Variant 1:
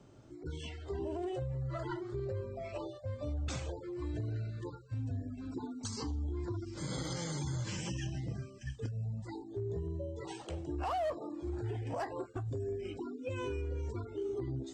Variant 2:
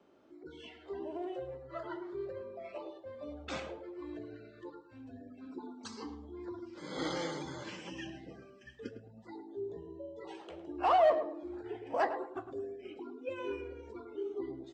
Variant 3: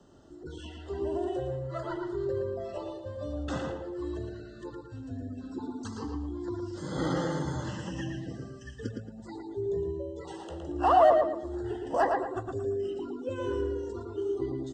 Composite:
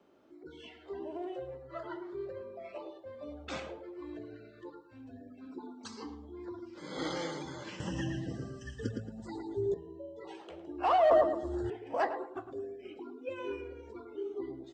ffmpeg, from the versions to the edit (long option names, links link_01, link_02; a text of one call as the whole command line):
ffmpeg -i take0.wav -i take1.wav -i take2.wav -filter_complex "[2:a]asplit=2[link_01][link_02];[1:a]asplit=3[link_03][link_04][link_05];[link_03]atrim=end=7.802[link_06];[link_01]atrim=start=7.798:end=9.742[link_07];[link_04]atrim=start=9.738:end=11.112[link_08];[link_02]atrim=start=11.108:end=11.702[link_09];[link_05]atrim=start=11.698[link_10];[link_06][link_07]acrossfade=duration=0.004:curve1=hsin:curve2=hsin[link_11];[link_11][link_08]acrossfade=duration=0.004:curve1=hsin:curve2=hsin[link_12];[link_12][link_09]acrossfade=duration=0.004:curve1=hsin:curve2=hsin[link_13];[link_13][link_10]acrossfade=duration=0.004:curve1=hsin:curve2=hsin" out.wav